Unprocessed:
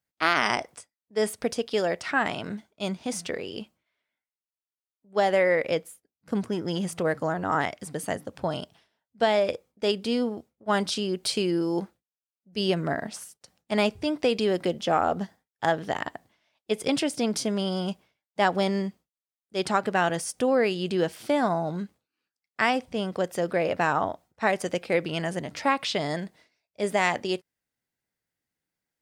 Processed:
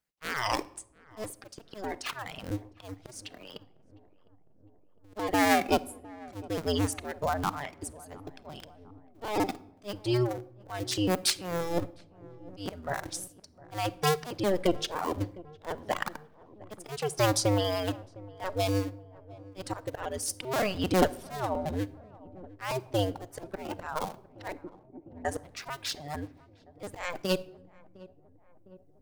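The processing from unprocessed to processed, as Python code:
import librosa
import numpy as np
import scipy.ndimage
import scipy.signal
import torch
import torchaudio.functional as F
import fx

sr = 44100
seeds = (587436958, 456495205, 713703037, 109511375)

p1 = fx.cycle_switch(x, sr, every=2, mode='inverted')
p2 = fx.dereverb_blind(p1, sr, rt60_s=1.6)
p3 = fx.dynamic_eq(p2, sr, hz=2200.0, q=0.76, threshold_db=-37.0, ratio=4.0, max_db=-3)
p4 = fx.auto_swell(p3, sr, attack_ms=407.0)
p5 = fx.backlash(p4, sr, play_db=-42.5)
p6 = p4 + (p5 * librosa.db_to_amplitude(-6.0))
p7 = fx.formant_cascade(p6, sr, vowel='u', at=(24.52, 25.25))
p8 = fx.echo_filtered(p7, sr, ms=707, feedback_pct=73, hz=890.0, wet_db=-19.5)
y = fx.room_shoebox(p8, sr, seeds[0], volume_m3=1900.0, walls='furnished', distance_m=0.47)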